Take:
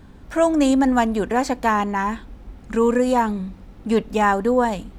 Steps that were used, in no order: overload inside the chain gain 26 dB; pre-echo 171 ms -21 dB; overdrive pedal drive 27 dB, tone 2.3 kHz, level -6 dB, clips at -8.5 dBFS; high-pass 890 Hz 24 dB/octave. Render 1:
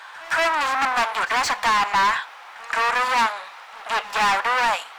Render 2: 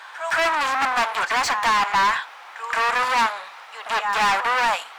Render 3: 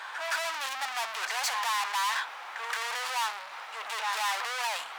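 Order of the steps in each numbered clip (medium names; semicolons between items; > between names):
overload inside the chain > high-pass > overdrive pedal > pre-echo; pre-echo > overload inside the chain > high-pass > overdrive pedal; pre-echo > overdrive pedal > overload inside the chain > high-pass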